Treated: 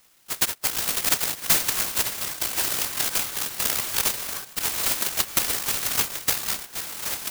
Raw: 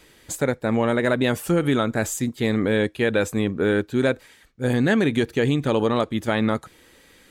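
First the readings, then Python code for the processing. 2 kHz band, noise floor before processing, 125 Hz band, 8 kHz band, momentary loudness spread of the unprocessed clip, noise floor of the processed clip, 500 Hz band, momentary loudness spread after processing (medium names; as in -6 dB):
-3.5 dB, -54 dBFS, -17.5 dB, +12.0 dB, 5 LU, -49 dBFS, -18.0 dB, 7 LU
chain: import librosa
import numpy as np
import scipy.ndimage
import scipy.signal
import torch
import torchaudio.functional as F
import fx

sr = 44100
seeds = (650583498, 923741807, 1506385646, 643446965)

y = fx.bit_reversed(x, sr, seeds[0], block=256)
y = scipy.signal.sosfilt(scipy.signal.ellip(3, 1.0, 40, [1600.0, 8500.0], 'bandpass', fs=sr, output='sos'), y)
y = fx.echo_pitch(y, sr, ms=569, semitones=-5, count=3, db_per_echo=-6.0)
y = fx.transient(y, sr, attack_db=8, sustain_db=2)
y = fx.clock_jitter(y, sr, seeds[1], jitter_ms=0.13)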